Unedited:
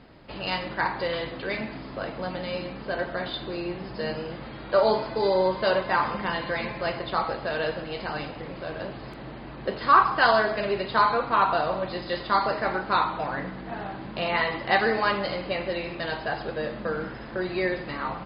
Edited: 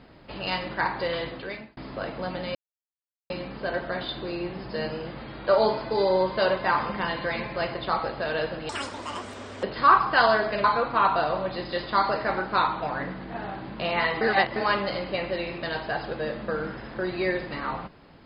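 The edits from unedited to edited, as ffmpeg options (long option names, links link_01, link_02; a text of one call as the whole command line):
ffmpeg -i in.wav -filter_complex "[0:a]asplit=8[link_01][link_02][link_03][link_04][link_05][link_06][link_07][link_08];[link_01]atrim=end=1.77,asetpts=PTS-STARTPTS,afade=type=out:start_time=1.28:duration=0.49[link_09];[link_02]atrim=start=1.77:end=2.55,asetpts=PTS-STARTPTS,afade=type=in:duration=0.004:curve=hsin,afade=type=out:start_time=0.776:duration=0.004:curve=hsin,apad=pad_dur=0.75[link_10];[link_03]atrim=start=2.55:end=7.944,asetpts=PTS-STARTPTS,afade=type=in:duration=0.004:curve=hsin[link_11];[link_04]atrim=start=7.94:end=9.68,asetpts=PTS-STARTPTS,asetrate=81585,aresample=44100[link_12];[link_05]atrim=start=9.676:end=10.692[link_13];[link_06]atrim=start=11.008:end=14.582[link_14];[link_07]atrim=start=14.578:end=14.932,asetpts=PTS-STARTPTS,areverse[link_15];[link_08]atrim=start=14.928[link_16];[link_09][link_10][link_11]concat=n=3:v=0:a=1[link_17];[link_17][link_12]acrossfade=duration=0.004:curve1=hsin:curve2=hsin[link_18];[link_18][link_13]acrossfade=duration=0.004:curve1=hsin:curve2=hsin[link_19];[link_19][link_14]acrossfade=duration=0.004:curve1=hsin:curve2=hsin[link_20];[link_20][link_15]acrossfade=duration=0.004:curve1=hsin:curve2=hsin[link_21];[link_21][link_16]acrossfade=duration=0.004:curve1=hsin:curve2=hsin" out.wav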